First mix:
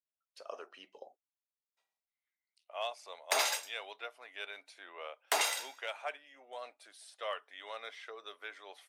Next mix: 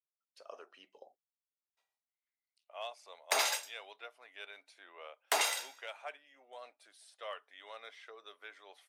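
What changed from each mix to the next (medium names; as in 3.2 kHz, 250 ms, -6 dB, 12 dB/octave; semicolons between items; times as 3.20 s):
speech -5.0 dB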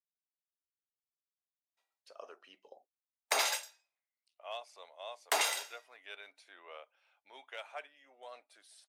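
speech: entry +1.70 s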